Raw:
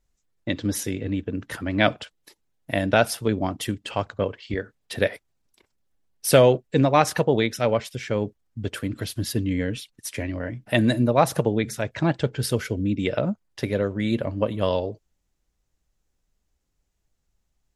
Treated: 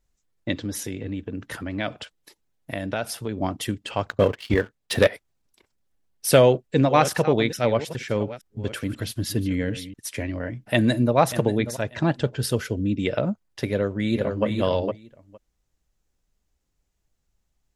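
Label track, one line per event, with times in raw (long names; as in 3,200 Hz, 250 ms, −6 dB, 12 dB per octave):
0.570000	3.390000	downward compressor 2 to 1, threshold −29 dBFS
4.090000	5.070000	leveller curve on the samples passes 2
6.280000	9.940000	delay that plays each chunk backwards 427 ms, level −14 dB
10.540000	11.170000	delay throw 590 ms, feedback 20%, level −13 dB
11.680000	13.020000	notch filter 2,200 Hz
13.690000	14.450000	delay throw 460 ms, feedback 10%, level −4.5 dB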